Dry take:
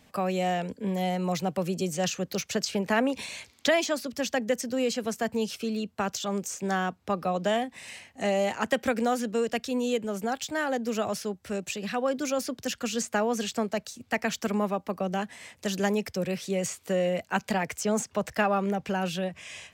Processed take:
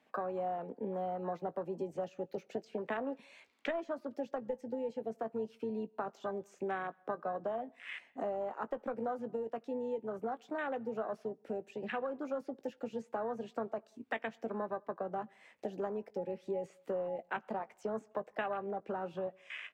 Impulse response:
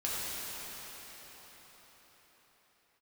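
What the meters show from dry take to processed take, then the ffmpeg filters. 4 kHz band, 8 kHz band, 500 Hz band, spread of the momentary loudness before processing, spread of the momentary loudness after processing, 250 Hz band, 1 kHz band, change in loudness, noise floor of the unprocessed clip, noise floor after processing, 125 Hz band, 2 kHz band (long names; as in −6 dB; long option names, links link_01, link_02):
−22.0 dB, below −30 dB, −8.5 dB, 6 LU, 5 LU, −13.0 dB, −9.0 dB, −10.5 dB, −61 dBFS, −68 dBFS, −16.5 dB, −12.5 dB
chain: -filter_complex "[0:a]acrossover=split=240 3000:gain=0.0708 1 0.178[link_01][link_02][link_03];[link_01][link_02][link_03]amix=inputs=3:normalize=0,asplit=2[link_04][link_05];[link_05]aeval=exprs='clip(val(0),-1,0.0211)':channel_layout=same,volume=-11dB[link_06];[link_04][link_06]amix=inputs=2:normalize=0,acompressor=threshold=-43dB:ratio=4,afwtdn=0.00631,asplit=2[link_07][link_08];[link_08]adelay=18,volume=-13dB[link_09];[link_07][link_09]amix=inputs=2:normalize=0,asplit=2[link_10][link_11];[1:a]atrim=start_sample=2205,afade=type=out:start_time=0.27:duration=0.01,atrim=end_sample=12348[link_12];[link_11][link_12]afir=irnorm=-1:irlink=0,volume=-29dB[link_13];[link_10][link_13]amix=inputs=2:normalize=0,volume=5dB"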